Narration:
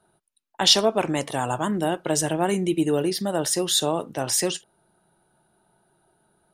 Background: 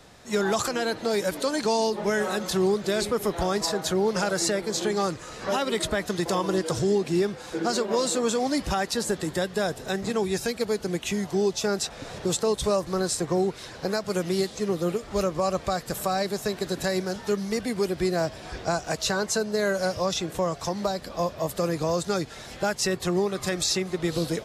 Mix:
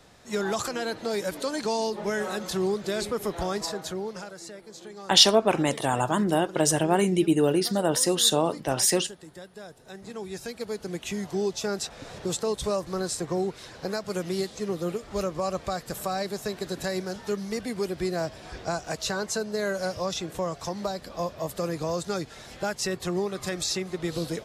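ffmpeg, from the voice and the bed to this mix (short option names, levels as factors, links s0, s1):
-filter_complex "[0:a]adelay=4500,volume=1.06[s0];[1:a]volume=3.16,afade=t=out:st=3.51:d=0.83:silence=0.211349,afade=t=in:st=9.82:d=1.43:silence=0.211349[s1];[s0][s1]amix=inputs=2:normalize=0"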